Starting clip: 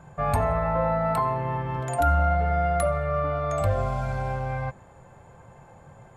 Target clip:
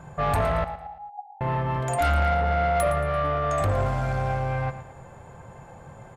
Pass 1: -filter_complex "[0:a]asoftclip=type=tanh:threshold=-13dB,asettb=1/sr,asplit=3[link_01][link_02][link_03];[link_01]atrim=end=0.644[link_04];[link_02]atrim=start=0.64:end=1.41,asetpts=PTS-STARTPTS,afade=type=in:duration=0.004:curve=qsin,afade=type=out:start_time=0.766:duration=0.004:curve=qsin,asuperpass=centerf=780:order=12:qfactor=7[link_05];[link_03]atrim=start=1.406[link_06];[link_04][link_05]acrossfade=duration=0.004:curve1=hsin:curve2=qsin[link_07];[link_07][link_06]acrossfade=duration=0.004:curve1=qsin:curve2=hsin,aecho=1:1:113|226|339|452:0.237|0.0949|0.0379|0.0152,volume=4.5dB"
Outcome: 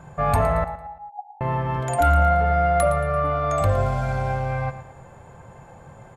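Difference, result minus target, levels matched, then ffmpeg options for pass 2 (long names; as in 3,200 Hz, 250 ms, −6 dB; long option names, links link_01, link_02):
soft clipping: distortion −13 dB
-filter_complex "[0:a]asoftclip=type=tanh:threshold=-23.5dB,asettb=1/sr,asplit=3[link_01][link_02][link_03];[link_01]atrim=end=0.644[link_04];[link_02]atrim=start=0.64:end=1.41,asetpts=PTS-STARTPTS,afade=type=in:duration=0.004:curve=qsin,afade=type=out:start_time=0.766:duration=0.004:curve=qsin,asuperpass=centerf=780:order=12:qfactor=7[link_05];[link_03]atrim=start=1.406[link_06];[link_04][link_05]acrossfade=duration=0.004:curve1=hsin:curve2=qsin[link_07];[link_07][link_06]acrossfade=duration=0.004:curve1=qsin:curve2=hsin,aecho=1:1:113|226|339|452:0.237|0.0949|0.0379|0.0152,volume=4.5dB"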